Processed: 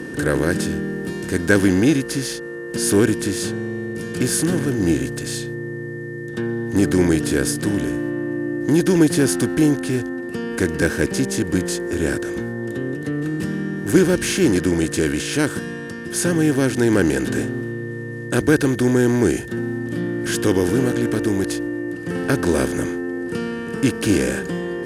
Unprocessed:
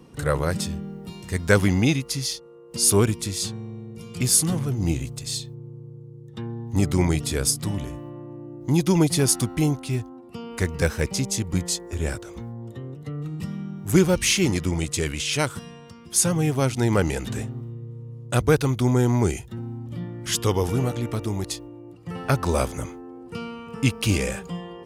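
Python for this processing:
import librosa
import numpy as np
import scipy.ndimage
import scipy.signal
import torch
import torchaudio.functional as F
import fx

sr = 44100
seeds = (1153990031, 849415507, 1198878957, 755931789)

y = fx.bin_compress(x, sr, power=0.6)
y = y + 10.0 ** (-34.0 / 20.0) * np.sin(2.0 * np.pi * 1800.0 * np.arange(len(y)) / sr)
y = fx.small_body(y, sr, hz=(300.0, 1600.0), ring_ms=20, db=12)
y = y * 10.0 ** (-6.0 / 20.0)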